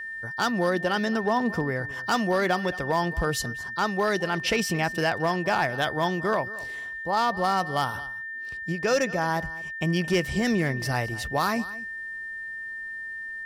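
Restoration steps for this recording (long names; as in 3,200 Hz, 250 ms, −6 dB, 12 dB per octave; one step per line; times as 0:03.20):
clipped peaks rebuilt −16 dBFS
notch filter 1,800 Hz, Q 30
echo removal 219 ms −18 dB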